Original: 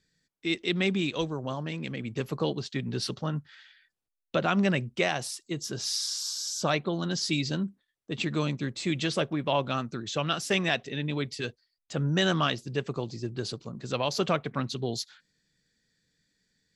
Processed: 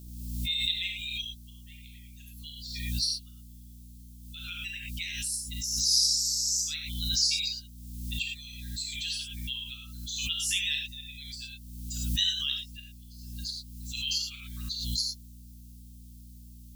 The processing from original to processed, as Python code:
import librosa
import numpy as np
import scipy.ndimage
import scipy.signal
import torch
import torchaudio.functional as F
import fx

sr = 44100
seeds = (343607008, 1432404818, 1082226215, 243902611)

y = fx.bin_expand(x, sr, power=2.0)
y = fx.dmg_noise_colour(y, sr, seeds[0], colour='blue', level_db=-71.0)
y = scipy.signal.sosfilt(scipy.signal.cheby2(4, 80, [210.0, 740.0], 'bandstop', fs=sr, output='sos'), y)
y = fx.add_hum(y, sr, base_hz=60, snr_db=15)
y = fx.rev_gated(y, sr, seeds[1], gate_ms=130, shape='flat', drr_db=-0.5)
y = fx.pre_swell(y, sr, db_per_s=37.0)
y = y * librosa.db_to_amplitude(7.5)